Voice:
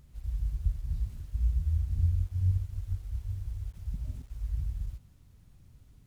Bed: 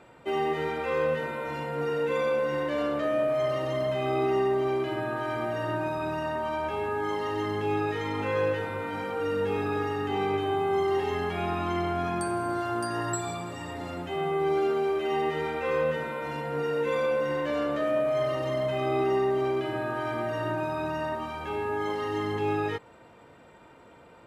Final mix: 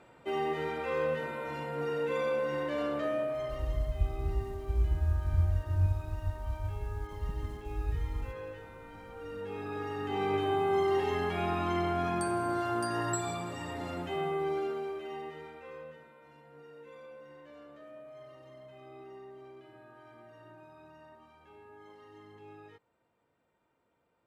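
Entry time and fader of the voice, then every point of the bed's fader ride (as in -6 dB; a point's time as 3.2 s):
3.35 s, -0.5 dB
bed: 3.07 s -4.5 dB
3.97 s -16.5 dB
9.04 s -16.5 dB
10.38 s -2 dB
14.06 s -2 dB
16.14 s -23.5 dB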